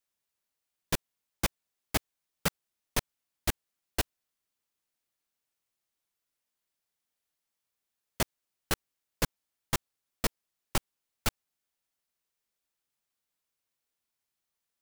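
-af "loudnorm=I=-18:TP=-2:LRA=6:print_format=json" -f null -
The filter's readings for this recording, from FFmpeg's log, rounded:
"input_i" : "-35.4",
"input_tp" : "-12.3",
"input_lra" : "8.1",
"input_thresh" : "-45.6",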